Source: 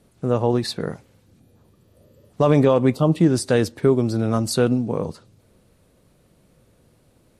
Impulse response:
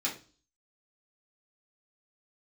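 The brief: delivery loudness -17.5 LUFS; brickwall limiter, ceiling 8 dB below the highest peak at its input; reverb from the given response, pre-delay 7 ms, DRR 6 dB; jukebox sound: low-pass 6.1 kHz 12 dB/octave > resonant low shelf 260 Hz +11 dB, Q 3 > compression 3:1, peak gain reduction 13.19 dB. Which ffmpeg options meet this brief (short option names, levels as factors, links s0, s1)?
-filter_complex "[0:a]alimiter=limit=0.211:level=0:latency=1,asplit=2[s0][s1];[1:a]atrim=start_sample=2205,adelay=7[s2];[s1][s2]afir=irnorm=-1:irlink=0,volume=0.266[s3];[s0][s3]amix=inputs=2:normalize=0,lowpass=6100,lowshelf=f=260:t=q:w=3:g=11,acompressor=threshold=0.0891:ratio=3,volume=1.88"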